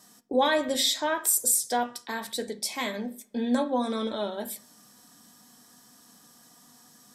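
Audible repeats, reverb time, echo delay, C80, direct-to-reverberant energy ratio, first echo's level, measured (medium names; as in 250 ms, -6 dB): no echo, 0.50 s, no echo, 24.0 dB, 7.5 dB, no echo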